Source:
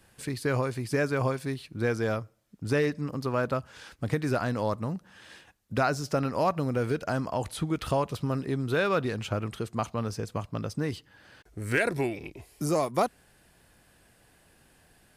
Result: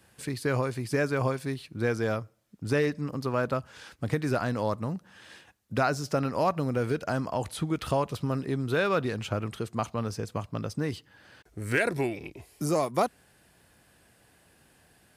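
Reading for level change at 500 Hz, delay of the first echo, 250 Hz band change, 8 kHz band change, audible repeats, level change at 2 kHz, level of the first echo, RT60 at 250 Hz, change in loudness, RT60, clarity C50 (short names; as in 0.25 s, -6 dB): 0.0 dB, none, 0.0 dB, 0.0 dB, none, 0.0 dB, none, none, 0.0 dB, none, none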